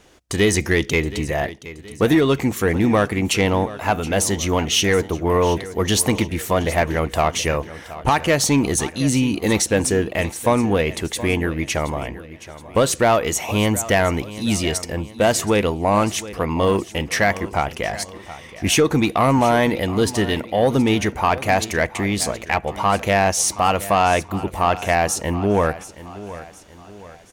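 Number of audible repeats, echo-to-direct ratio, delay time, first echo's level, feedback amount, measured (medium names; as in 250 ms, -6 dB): 3, -15.0 dB, 723 ms, -16.0 dB, 44%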